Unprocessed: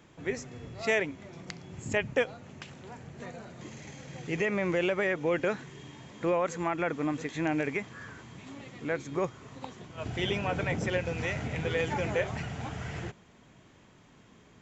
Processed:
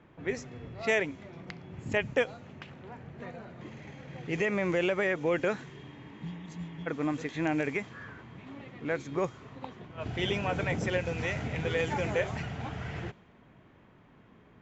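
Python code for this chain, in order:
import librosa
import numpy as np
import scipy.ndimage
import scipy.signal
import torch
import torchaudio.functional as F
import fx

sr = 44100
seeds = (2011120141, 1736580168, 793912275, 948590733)

y = fx.spec_repair(x, sr, seeds[0], start_s=5.97, length_s=0.87, low_hz=240.0, high_hz=3100.0, source='before')
y = fx.env_lowpass(y, sr, base_hz=2100.0, full_db=-24.5)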